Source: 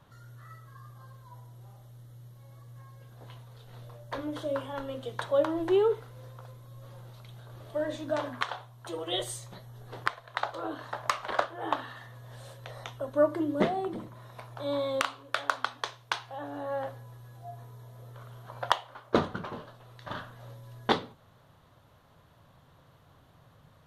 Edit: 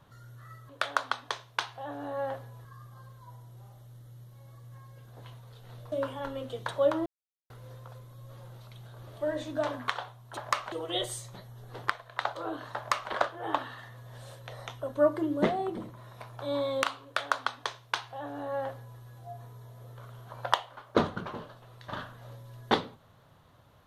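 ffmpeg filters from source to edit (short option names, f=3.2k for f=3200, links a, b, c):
-filter_complex "[0:a]asplit=8[a][b][c][d][e][f][g][h];[a]atrim=end=0.692[i];[b]atrim=start=15.218:end=17.182[j];[c]atrim=start=0.688:end=3.962[k];[d]atrim=start=4.448:end=5.59,asetpts=PTS-STARTPTS,afade=t=out:st=1.138:d=0.004:c=hsin[l];[e]atrim=start=5.59:end=6.03,asetpts=PTS-STARTPTS,volume=0[m];[f]atrim=start=6.03:end=8.902,asetpts=PTS-STARTPTS,afade=t=in:d=0.004:c=hsin[n];[g]atrim=start=10.938:end=11.292[o];[h]atrim=start=8.898[p];[i][j]acrossfade=d=0.004:c1=hsin:c2=hsin[q];[q][k]acrossfade=d=0.004:c1=hsin:c2=hsin[r];[l][m][n]concat=n=3:v=0:a=1[s];[r][s]acrossfade=d=0.004:c1=hsin:c2=hsin[t];[t][o]acrossfade=d=0.004:c1=hsin:c2=hsin[u];[u][p]acrossfade=d=0.004:c1=hsin:c2=hsin"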